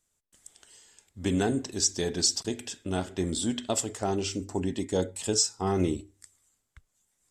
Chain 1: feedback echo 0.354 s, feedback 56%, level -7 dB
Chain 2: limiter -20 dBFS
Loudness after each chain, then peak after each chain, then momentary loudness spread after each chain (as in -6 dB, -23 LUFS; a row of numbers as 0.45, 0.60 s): -28.0, -32.0 LUFS; -9.5, -20.0 dBFS; 12, 5 LU